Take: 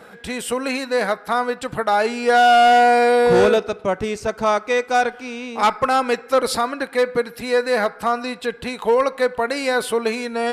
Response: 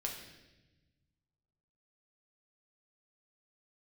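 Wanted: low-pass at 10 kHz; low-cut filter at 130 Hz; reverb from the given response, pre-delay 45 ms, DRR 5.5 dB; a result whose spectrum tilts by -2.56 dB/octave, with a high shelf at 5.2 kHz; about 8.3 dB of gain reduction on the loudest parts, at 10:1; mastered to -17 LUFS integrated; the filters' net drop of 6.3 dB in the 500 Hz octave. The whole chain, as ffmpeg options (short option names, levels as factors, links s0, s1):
-filter_complex "[0:a]highpass=130,lowpass=10000,equalizer=f=500:t=o:g=-7.5,highshelf=f=5200:g=7,acompressor=threshold=0.1:ratio=10,asplit=2[s0][s1];[1:a]atrim=start_sample=2205,adelay=45[s2];[s1][s2]afir=irnorm=-1:irlink=0,volume=0.501[s3];[s0][s3]amix=inputs=2:normalize=0,volume=2.51"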